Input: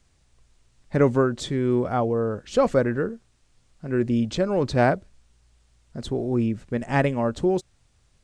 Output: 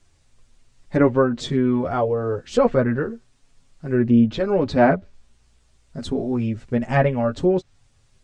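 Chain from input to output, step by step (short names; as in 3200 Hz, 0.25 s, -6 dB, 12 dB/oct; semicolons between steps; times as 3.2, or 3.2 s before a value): chorus voices 4, 0.25 Hz, delay 10 ms, depth 2.9 ms; treble ducked by the level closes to 2600 Hz, closed at -19.5 dBFS; gain +5.5 dB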